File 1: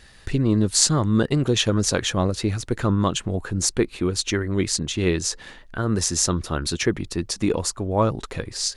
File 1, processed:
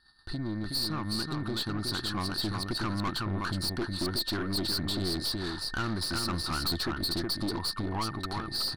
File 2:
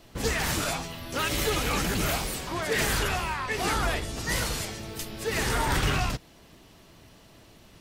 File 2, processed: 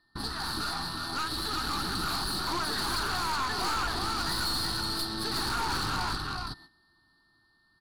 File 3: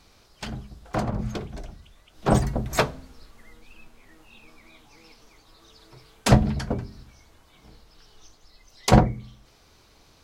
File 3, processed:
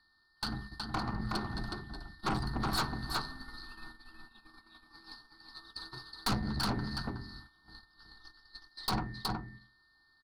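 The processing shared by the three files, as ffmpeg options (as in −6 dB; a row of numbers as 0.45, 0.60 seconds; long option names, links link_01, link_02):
-af "acompressor=threshold=-29dB:ratio=4,aexciter=amount=2.1:drive=8.2:freq=3900,firequalizer=gain_entry='entry(140,0);entry(340,5);entry(520,-16);entry(790,6);entry(1400,11);entry(2200,-16);entry(4400,9);entry(6300,-30);entry(10000,-7);entry(15000,-26)':delay=0.05:min_phase=1,dynaudnorm=framelen=580:gausssize=7:maxgain=5dB,aeval=exprs='val(0)+0.00501*sin(2*PI*1800*n/s)':channel_layout=same,agate=range=-19dB:threshold=-40dB:ratio=16:detection=peak,aecho=1:1:369:0.562,aeval=exprs='(tanh(15.8*val(0)+0.45)-tanh(0.45))/15.8':channel_layout=same,volume=-3dB"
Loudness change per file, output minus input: −9.0, −2.5, −12.5 LU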